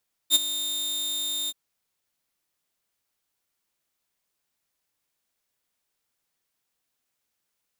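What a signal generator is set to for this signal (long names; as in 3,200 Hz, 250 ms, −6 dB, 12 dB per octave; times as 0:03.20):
note with an ADSR envelope saw 3,650 Hz, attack 51 ms, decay 24 ms, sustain −13.5 dB, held 1.19 s, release 37 ms −11 dBFS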